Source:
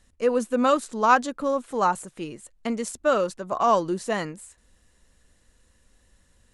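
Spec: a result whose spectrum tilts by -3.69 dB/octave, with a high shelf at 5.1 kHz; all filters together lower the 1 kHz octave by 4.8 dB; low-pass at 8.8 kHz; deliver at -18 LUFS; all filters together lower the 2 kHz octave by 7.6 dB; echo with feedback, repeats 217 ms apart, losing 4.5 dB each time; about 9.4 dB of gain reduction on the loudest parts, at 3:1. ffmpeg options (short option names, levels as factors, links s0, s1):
-af "lowpass=8800,equalizer=f=1000:t=o:g=-3.5,equalizer=f=2000:t=o:g=-8.5,highshelf=f=5100:g=-9,acompressor=threshold=0.0282:ratio=3,aecho=1:1:217|434|651|868|1085|1302|1519|1736|1953:0.596|0.357|0.214|0.129|0.0772|0.0463|0.0278|0.0167|0.01,volume=5.62"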